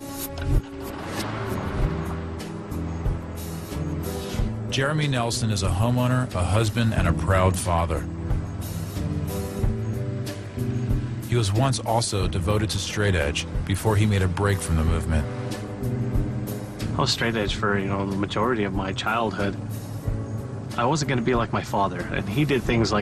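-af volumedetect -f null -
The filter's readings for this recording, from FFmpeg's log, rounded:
mean_volume: -24.3 dB
max_volume: -7.8 dB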